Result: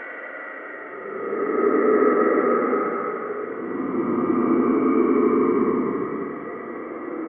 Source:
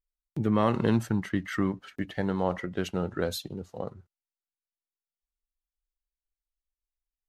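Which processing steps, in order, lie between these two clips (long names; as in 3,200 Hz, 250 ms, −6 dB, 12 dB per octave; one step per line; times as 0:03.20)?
every overlapping window played backwards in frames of 44 ms
automatic gain control gain up to 16 dB
single-sideband voice off tune +80 Hz 190–2,200 Hz
output level in coarse steps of 18 dB
single-tap delay 892 ms −24 dB
dense smooth reverb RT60 2.1 s, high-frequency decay 0.9×, DRR 6.5 dB
extreme stretch with random phases 40×, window 0.05 s, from 0:01.55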